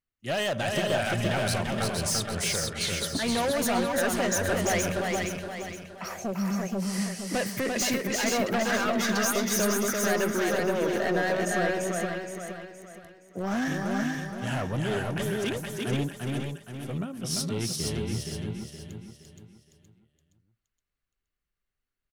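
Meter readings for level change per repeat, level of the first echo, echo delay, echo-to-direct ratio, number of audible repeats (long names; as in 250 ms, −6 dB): repeats not evenly spaced, −3.5 dB, 343 ms, 0.5 dB, 8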